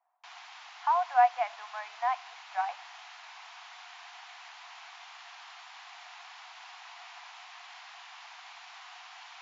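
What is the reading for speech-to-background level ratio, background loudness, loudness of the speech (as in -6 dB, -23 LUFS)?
17.5 dB, -47.5 LUFS, -30.0 LUFS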